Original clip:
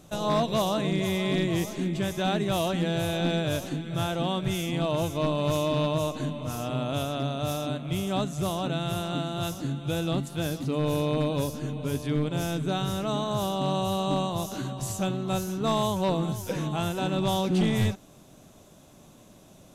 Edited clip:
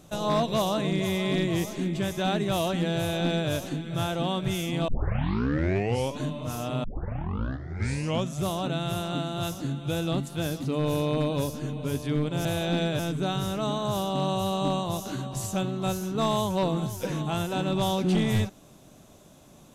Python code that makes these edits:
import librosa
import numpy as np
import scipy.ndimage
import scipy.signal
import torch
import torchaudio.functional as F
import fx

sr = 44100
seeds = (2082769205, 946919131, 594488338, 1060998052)

y = fx.edit(x, sr, fx.duplicate(start_s=2.97, length_s=0.54, to_s=12.45),
    fx.tape_start(start_s=4.88, length_s=1.35),
    fx.tape_start(start_s=6.84, length_s=1.53), tone=tone)